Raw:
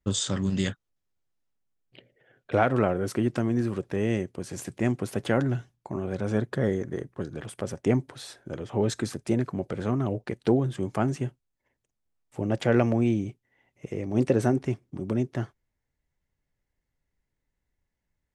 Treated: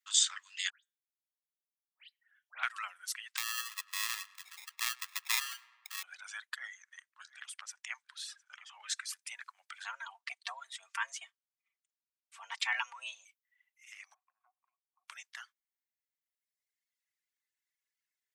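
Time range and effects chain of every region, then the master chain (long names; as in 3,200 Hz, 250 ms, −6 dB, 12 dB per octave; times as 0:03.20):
0:00.70–0:02.63: tuned comb filter 160 Hz, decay 0.42 s, mix 40% + all-pass dispersion highs, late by 140 ms, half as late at 2,500 Hz
0:03.37–0:06.03: sample-rate reduction 1,500 Hz + feedback echo with a low-pass in the loop 103 ms, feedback 72%, low-pass 2,800 Hz, level −10 dB
0:06.56–0:09.09: low-pass filter 8,100 Hz + single-tap delay 707 ms −17 dB + dynamic equaliser 4,300 Hz, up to −3 dB, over −50 dBFS, Q 1
0:09.84–0:13.25: low-pass filter 7,900 Hz + comb filter 4.6 ms, depth 52% + frequency shifter +280 Hz
0:14.14–0:15.08: formant resonators in series a + downward compressor 4 to 1, threshold −48 dBFS
whole clip: Bessel high-pass filter 2,100 Hz, order 8; reverb reduction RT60 1.7 s; level +3.5 dB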